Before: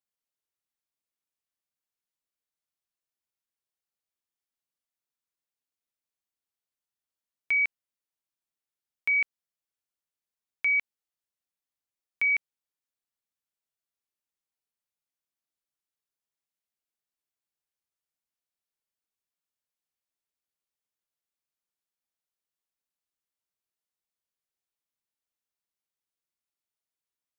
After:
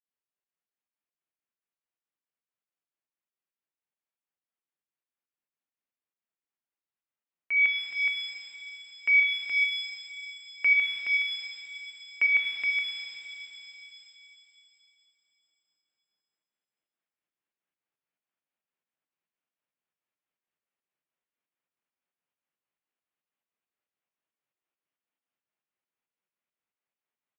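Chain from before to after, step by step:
Butterworth low-pass 3,000 Hz
on a send: single-tap delay 421 ms −5 dB
on the sum: speech leveller 2 s
high-pass filter 130 Hz 24 dB per octave
fake sidechain pumping 137 BPM, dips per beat 2, −17 dB, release 187 ms
reverb with rising layers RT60 3.2 s, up +7 semitones, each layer −8 dB, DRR 3 dB

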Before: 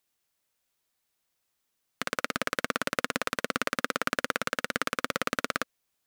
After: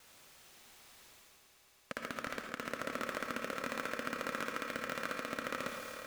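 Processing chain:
slices reordered back to front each 126 ms, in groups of 5
high-shelf EQ 7,900 Hz −9 dB
reversed playback
upward compression, threshold −30 dBFS
reversed playback
transient designer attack −2 dB, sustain +7 dB
soft clipping −12 dBFS, distortion −16 dB
echo that builds up and dies away 110 ms, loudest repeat 5, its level −15 dB
on a send at −2.5 dB: convolution reverb RT60 0.60 s, pre-delay 56 ms
on the sum: level −7.5 dB

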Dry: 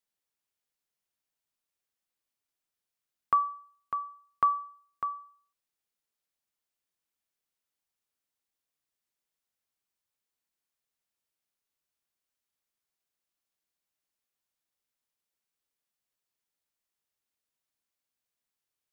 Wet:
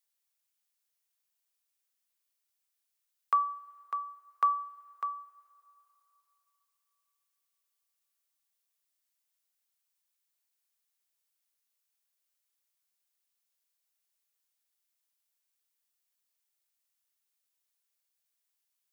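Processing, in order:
high-pass filter 360 Hz 24 dB per octave
spectral tilt +2.5 dB per octave
coupled-rooms reverb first 0.25 s, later 3.8 s, from −18 dB, DRR 15.5 dB
level −2.5 dB

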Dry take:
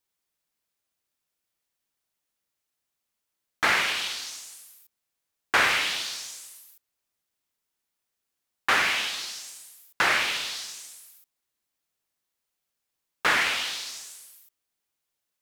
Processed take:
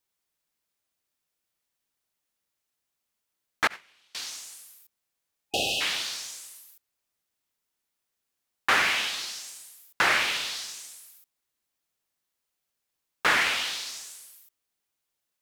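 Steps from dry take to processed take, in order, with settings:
0:03.67–0:04.15: noise gate −18 dBFS, range −34 dB
0:05.41–0:05.79: healed spectral selection 820–2,500 Hz before

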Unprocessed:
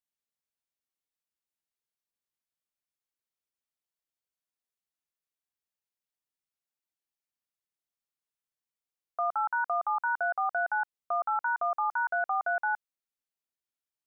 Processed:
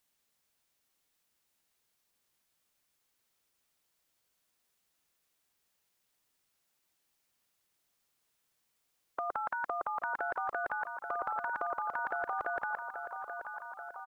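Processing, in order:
dynamic equaliser 340 Hz, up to +4 dB, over −47 dBFS, Q 0.93
on a send: repeating echo 833 ms, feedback 45%, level −14 dB
on the sum: every bin compressed towards the loudest bin 2 to 1

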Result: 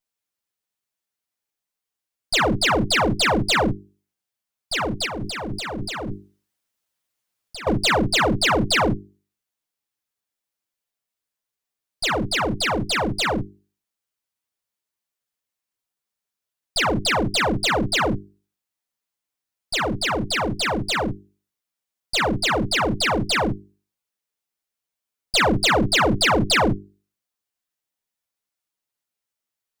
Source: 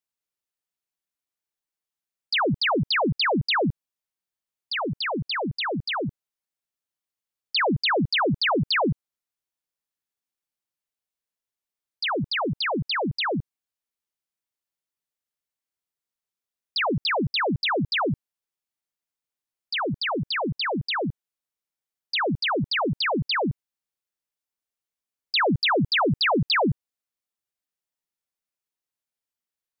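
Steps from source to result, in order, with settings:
lower of the sound and its delayed copy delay 9.5 ms
mains-hum notches 50/100/150/200/250/300/350/400 Hz
0:05.06–0:07.67: compressor whose output falls as the input rises −35 dBFS, ratio −1
level +5.5 dB

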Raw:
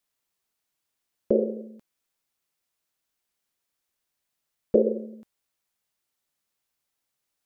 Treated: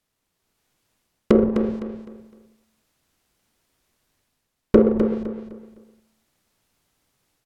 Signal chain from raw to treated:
each half-wave held at its own peak
low-shelf EQ 410 Hz +10.5 dB
automatic gain control gain up to 7 dB
treble cut that deepens with the level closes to 680 Hz, closed at −14.5 dBFS
repeating echo 255 ms, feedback 31%, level −8 dB

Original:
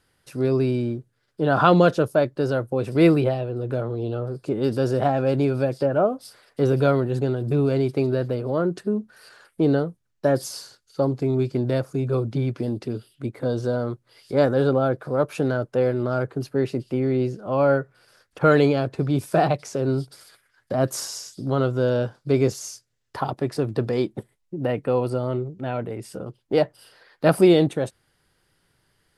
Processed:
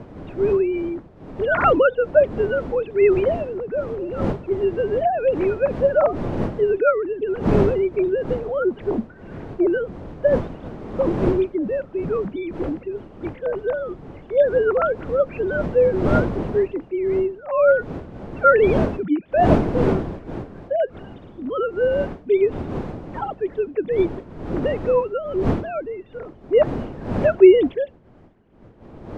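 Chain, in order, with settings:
three sine waves on the formant tracks
wind on the microphone 370 Hz −30 dBFS
level +1.5 dB

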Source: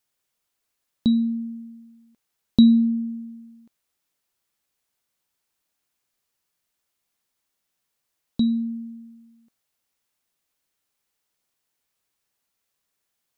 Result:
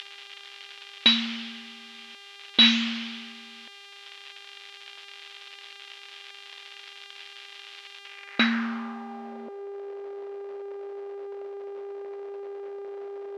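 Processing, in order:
variable-slope delta modulation 32 kbit/s
bass and treble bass −15 dB, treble −14 dB
upward compression, threshold −48 dBFS
hum with harmonics 400 Hz, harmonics 33, −64 dBFS −6 dB per octave
band-pass filter sweep 3,200 Hz → 430 Hz, 0:07.98–0:09.64
boost into a limiter +34 dB
level −5 dB

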